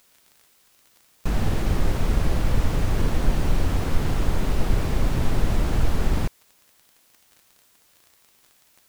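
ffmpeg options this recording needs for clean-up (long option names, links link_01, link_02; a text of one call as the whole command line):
ffmpeg -i in.wav -af "adeclick=threshold=4,agate=range=-21dB:threshold=-52dB" out.wav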